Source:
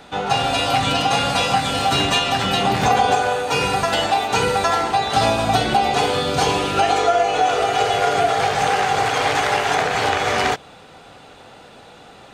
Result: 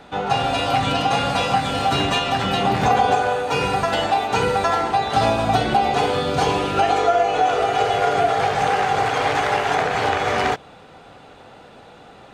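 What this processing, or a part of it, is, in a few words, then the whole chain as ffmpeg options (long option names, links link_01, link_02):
behind a face mask: -af "highshelf=frequency=3100:gain=-8"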